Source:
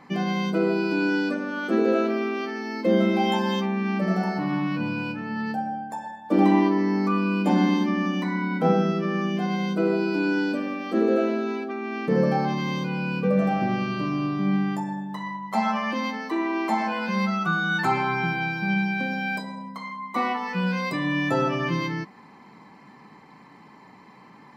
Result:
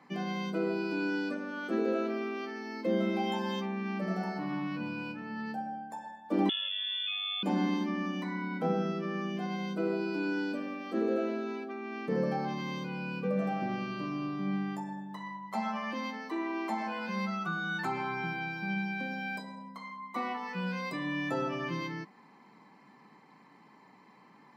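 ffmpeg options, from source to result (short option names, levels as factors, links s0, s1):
-filter_complex "[0:a]asettb=1/sr,asplit=3[s0][s1][s2];[s0]atrim=end=6.494[s3];[s1]atrim=start=6.49:end=7.43,asetpts=PTS-STARTPTS,afade=t=in:d=0.004:c=qsin,afade=t=out:st=0.936:d=0.004:c=qsin,lowpass=f=3100:t=q:w=0.5098,lowpass=f=3100:t=q:w=0.6013,lowpass=f=3100:t=q:w=0.9,lowpass=f=3100:t=q:w=2.563,afreqshift=-3700[s4];[s2]atrim=start=7.426[s5];[s3][s4]acrossfade=d=0.004:c1=hsin:c2=qsin[s6];[s6][s5]acrossfade=d=0.004:c1=qsin:c2=hsin,highpass=150,acrossover=split=480[s7][s8];[s8]acompressor=threshold=0.0708:ratio=6[s9];[s7][s9]amix=inputs=2:normalize=0,volume=0.376"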